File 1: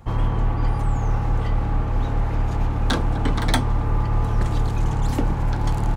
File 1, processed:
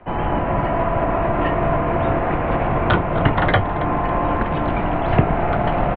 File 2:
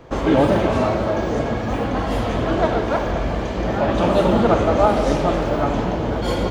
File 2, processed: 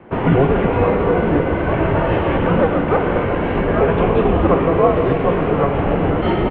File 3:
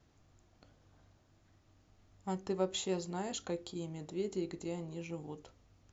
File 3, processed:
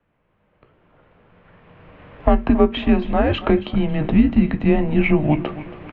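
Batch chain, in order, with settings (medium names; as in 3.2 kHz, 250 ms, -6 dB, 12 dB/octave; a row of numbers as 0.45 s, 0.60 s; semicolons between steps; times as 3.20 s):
recorder AGC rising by 13 dB/s; bass shelf 130 Hz -6.5 dB; doubling 16 ms -14 dB; feedback delay 276 ms, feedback 44%, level -16 dB; mistuned SSB -150 Hz 160–2900 Hz; peak normalisation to -1.5 dBFS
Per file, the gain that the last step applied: +7.5 dB, +2.5 dB, +3.5 dB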